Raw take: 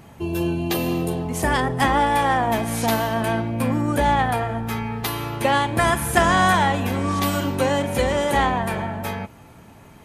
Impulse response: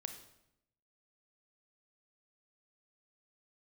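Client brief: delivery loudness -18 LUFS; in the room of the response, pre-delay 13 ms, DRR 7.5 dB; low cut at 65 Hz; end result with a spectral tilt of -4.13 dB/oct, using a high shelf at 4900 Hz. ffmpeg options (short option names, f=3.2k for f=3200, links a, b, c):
-filter_complex "[0:a]highpass=65,highshelf=f=4.9k:g=-5,asplit=2[a][b];[1:a]atrim=start_sample=2205,adelay=13[c];[b][c]afir=irnorm=-1:irlink=0,volume=-5dB[d];[a][d]amix=inputs=2:normalize=0,volume=3dB"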